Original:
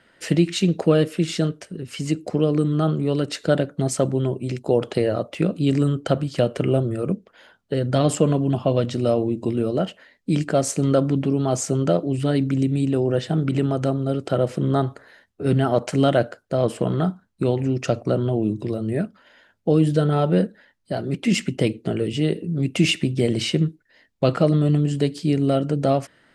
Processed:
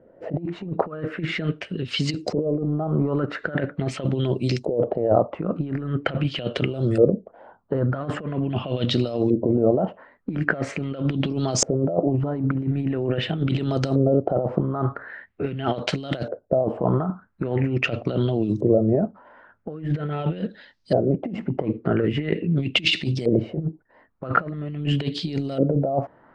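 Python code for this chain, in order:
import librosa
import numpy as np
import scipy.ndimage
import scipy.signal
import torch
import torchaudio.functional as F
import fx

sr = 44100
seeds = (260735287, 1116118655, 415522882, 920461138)

y = fx.over_compress(x, sr, threshold_db=-23.0, ratio=-0.5)
y = fx.filter_lfo_lowpass(y, sr, shape='saw_up', hz=0.43, low_hz=490.0, high_hz=5600.0, q=3.1)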